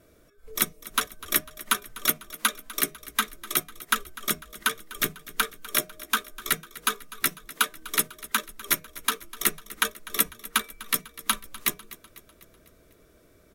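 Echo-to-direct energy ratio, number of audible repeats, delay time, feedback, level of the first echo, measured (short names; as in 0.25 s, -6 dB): -16.5 dB, 4, 0.249 s, 54%, -18.0 dB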